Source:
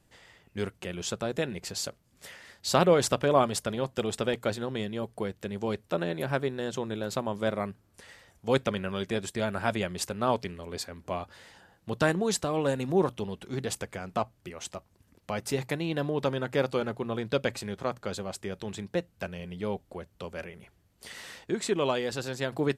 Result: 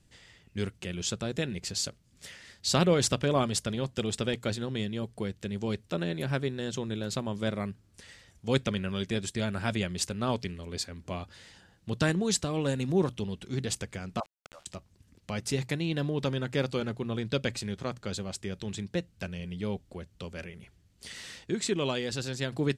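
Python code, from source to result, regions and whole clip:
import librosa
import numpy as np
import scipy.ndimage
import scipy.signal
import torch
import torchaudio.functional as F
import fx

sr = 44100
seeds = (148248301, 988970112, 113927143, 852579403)

y = fx.chain(x, sr, fx.cheby1_bandpass(low_hz=550.0, high_hz=1400.0, order=4),
    fx.sample_gate(floor_db=-53.0),
    fx.pre_swell(db_per_s=20.0), at=(14.2, 14.66))
y = scipy.signal.sosfilt(scipy.signal.butter(2, 8500.0, 'lowpass', fs=sr, output='sos'), y)
y = fx.peak_eq(y, sr, hz=810.0, db=-11.0, octaves=2.6)
y = F.gain(torch.from_numpy(y), 4.5).numpy()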